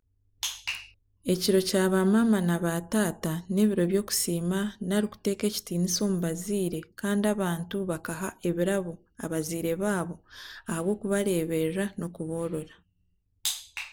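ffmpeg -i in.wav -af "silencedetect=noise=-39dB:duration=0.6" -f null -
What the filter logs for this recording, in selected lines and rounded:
silence_start: 12.64
silence_end: 13.45 | silence_duration: 0.81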